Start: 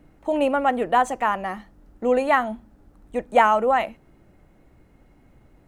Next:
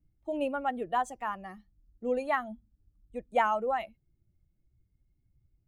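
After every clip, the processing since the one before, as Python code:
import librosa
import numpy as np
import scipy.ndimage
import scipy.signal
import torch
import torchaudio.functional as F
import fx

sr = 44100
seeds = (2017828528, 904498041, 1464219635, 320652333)

y = fx.bin_expand(x, sr, power=1.5)
y = F.gain(torch.from_numpy(y), -8.5).numpy()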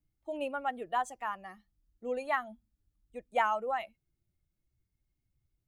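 y = fx.low_shelf(x, sr, hz=460.0, db=-10.0)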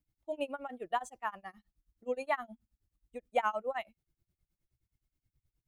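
y = x * (1.0 - 0.96 / 2.0 + 0.96 / 2.0 * np.cos(2.0 * np.pi * 9.5 * (np.arange(len(x)) / sr)))
y = F.gain(torch.from_numpy(y), 2.0).numpy()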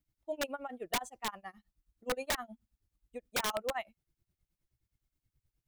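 y = (np.mod(10.0 ** (25.5 / 20.0) * x + 1.0, 2.0) - 1.0) / 10.0 ** (25.5 / 20.0)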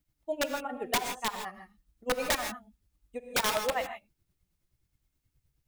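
y = fx.rev_gated(x, sr, seeds[0], gate_ms=180, shape='rising', drr_db=6.0)
y = F.gain(torch.from_numpy(y), 5.0).numpy()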